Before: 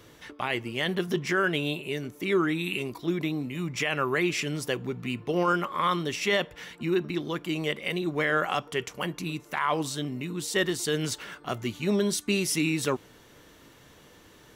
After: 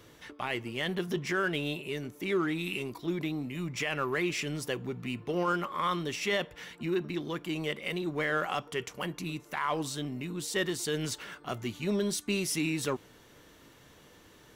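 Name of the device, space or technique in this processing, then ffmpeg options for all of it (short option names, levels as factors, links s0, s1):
parallel distortion: -filter_complex "[0:a]asplit=2[s0][s1];[s1]asoftclip=type=hard:threshold=0.0237,volume=0.376[s2];[s0][s2]amix=inputs=2:normalize=0,volume=0.531"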